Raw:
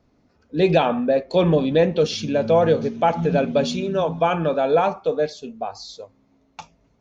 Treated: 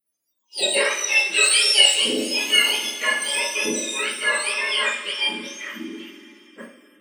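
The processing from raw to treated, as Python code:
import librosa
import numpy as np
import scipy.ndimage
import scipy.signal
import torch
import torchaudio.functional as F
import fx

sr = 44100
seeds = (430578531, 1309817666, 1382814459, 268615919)

p1 = fx.octave_mirror(x, sr, pivot_hz=1200.0)
p2 = fx.level_steps(p1, sr, step_db=10)
p3 = p1 + (p2 * librosa.db_to_amplitude(2.0))
p4 = fx.tilt_shelf(p3, sr, db=-6.0, hz=710.0, at=(1.12, 2.02))
p5 = fx.rev_double_slope(p4, sr, seeds[0], early_s=0.41, late_s=3.4, knee_db=-19, drr_db=-7.5)
p6 = fx.noise_reduce_blind(p5, sr, reduce_db=23)
y = p6 * librosa.db_to_amplitude(-11.0)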